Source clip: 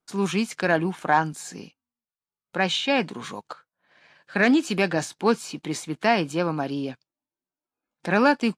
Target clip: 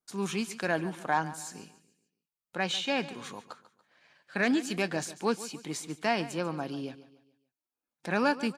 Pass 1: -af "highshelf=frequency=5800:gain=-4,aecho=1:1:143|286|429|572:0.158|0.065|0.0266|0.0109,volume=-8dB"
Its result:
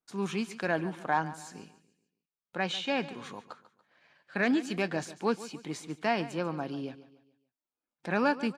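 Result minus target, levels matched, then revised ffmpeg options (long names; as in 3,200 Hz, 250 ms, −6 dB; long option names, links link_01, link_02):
8,000 Hz band −6.5 dB
-af "highshelf=frequency=5800:gain=7.5,aecho=1:1:143|286|429|572:0.158|0.065|0.0266|0.0109,volume=-8dB"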